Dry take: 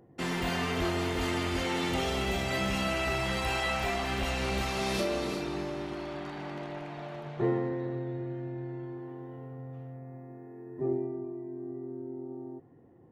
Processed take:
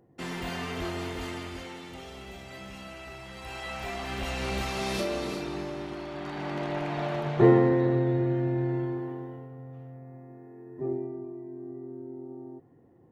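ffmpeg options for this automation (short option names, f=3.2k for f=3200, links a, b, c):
-af "volume=19.5dB,afade=t=out:st=1.05:d=0.78:silence=0.334965,afade=t=in:st=3.33:d=1.19:silence=0.223872,afade=t=in:st=6.12:d=0.92:silence=0.316228,afade=t=out:st=8.76:d=0.72:silence=0.281838"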